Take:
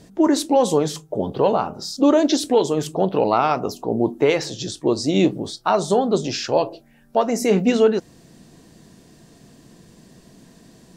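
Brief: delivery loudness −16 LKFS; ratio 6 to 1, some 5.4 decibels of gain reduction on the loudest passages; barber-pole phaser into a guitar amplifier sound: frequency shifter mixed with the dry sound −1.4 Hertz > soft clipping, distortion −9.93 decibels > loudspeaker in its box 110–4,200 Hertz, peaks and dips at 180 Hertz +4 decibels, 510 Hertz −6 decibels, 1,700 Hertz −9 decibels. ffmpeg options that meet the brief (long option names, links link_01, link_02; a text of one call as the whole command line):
ffmpeg -i in.wav -filter_complex "[0:a]acompressor=threshold=-17dB:ratio=6,asplit=2[link_01][link_02];[link_02]afreqshift=-1.4[link_03];[link_01][link_03]amix=inputs=2:normalize=1,asoftclip=threshold=-24dB,highpass=110,equalizer=frequency=180:width_type=q:width=4:gain=4,equalizer=frequency=510:width_type=q:width=4:gain=-6,equalizer=frequency=1700:width_type=q:width=4:gain=-9,lowpass=frequency=4200:width=0.5412,lowpass=frequency=4200:width=1.3066,volume=16dB" out.wav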